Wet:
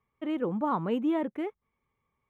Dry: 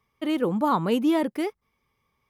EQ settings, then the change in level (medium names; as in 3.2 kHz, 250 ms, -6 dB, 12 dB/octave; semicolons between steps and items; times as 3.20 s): boxcar filter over 9 samples; -5.5 dB